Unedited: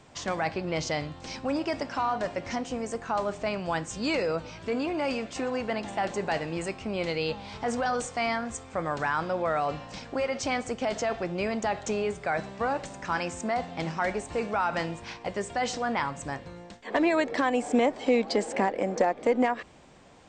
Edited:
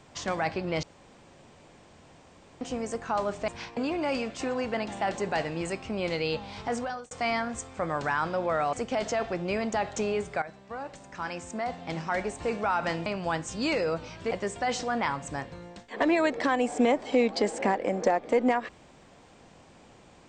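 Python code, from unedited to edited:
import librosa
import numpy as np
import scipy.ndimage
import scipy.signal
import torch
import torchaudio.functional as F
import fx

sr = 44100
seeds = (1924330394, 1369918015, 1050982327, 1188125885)

y = fx.edit(x, sr, fx.room_tone_fill(start_s=0.83, length_s=1.78),
    fx.swap(start_s=3.48, length_s=1.25, other_s=14.96, other_length_s=0.29),
    fx.fade_out_span(start_s=7.64, length_s=0.43),
    fx.cut(start_s=9.69, length_s=0.94),
    fx.fade_in_from(start_s=12.32, length_s=2.04, floor_db=-14.0), tone=tone)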